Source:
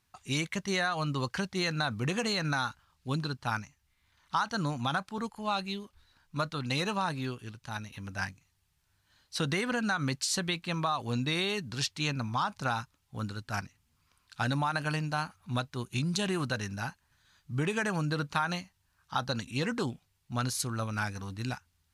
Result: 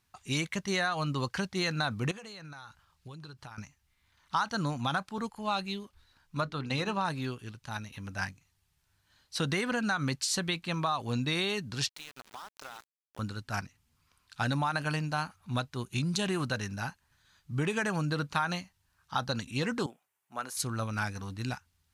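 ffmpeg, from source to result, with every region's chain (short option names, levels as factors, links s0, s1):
-filter_complex "[0:a]asettb=1/sr,asplit=3[s0][s1][s2];[s0]atrim=end=2.114[s3];[s1]atrim=start=2.11:end=3.58,asetpts=PTS-STARTPTS,afade=t=in:d=0.004:c=qsin,afade=t=out:st=1.466:d=0.004:c=qsin,equalizer=f=250:w=7.5:g=-14,acompressor=threshold=0.00794:ratio=16:attack=3.2:release=140:knee=1:detection=peak[s4];[s2]atrim=start=3.576[s5];[s3][s4]acrossfade=d=0.004:c1=hsin:c2=qsin[s6];[s6][s5]acrossfade=d=0.004:c1=qsin:c2=hsin,asettb=1/sr,asplit=3[s7][s8][s9];[s7]atrim=end=6.404[s10];[s8]atrim=start=6.4:end=7.05,asetpts=PTS-STARTPTS,afade=t=in:d=0.004:c=qsin,afade=t=out:st=0.646:d=0.004:c=qsin,aemphasis=mode=reproduction:type=cd,bandreject=f=60:t=h:w=6,bandreject=f=120:t=h:w=6,bandreject=f=180:t=h:w=6,bandreject=f=240:t=h:w=6,bandreject=f=300:t=h:w=6,bandreject=f=360:t=h:w=6,bandreject=f=420:t=h:w=6[s11];[s9]atrim=start=7.046[s12];[s10][s11]acrossfade=d=0.004:c1=hsin:c2=qsin[s13];[s13][s12]acrossfade=d=0.004:c1=qsin:c2=hsin,asettb=1/sr,asplit=3[s14][s15][s16];[s14]atrim=end=11.894[s17];[s15]atrim=start=11.89:end=13.19,asetpts=PTS-STARTPTS,afade=t=in:d=0.004:c=qsin,afade=t=out:st=1.296:d=0.004:c=qsin,highpass=510,acompressor=threshold=0.00891:ratio=6:attack=3.2:release=140:knee=1:detection=peak,aeval=exprs='val(0)*gte(abs(val(0)),0.00596)':c=same[s18];[s16]atrim=start=13.186[s19];[s17][s18]acrossfade=d=0.004:c1=hsin:c2=qsin[s20];[s20][s19]acrossfade=d=0.004:c1=qsin:c2=hsin,asettb=1/sr,asplit=3[s21][s22][s23];[s21]atrim=end=19.864[s24];[s22]atrim=start=19.86:end=20.57,asetpts=PTS-STARTPTS,afade=t=in:d=0.004:c=qsin,afade=t=out:st=0.706:d=0.004:c=qsin,highpass=510,equalizer=f=4400:w=1.1:g=-14[s25];[s23]atrim=start=20.566[s26];[s24][s25]acrossfade=d=0.004:c1=hsin:c2=qsin[s27];[s27][s26]acrossfade=d=0.004:c1=qsin:c2=hsin"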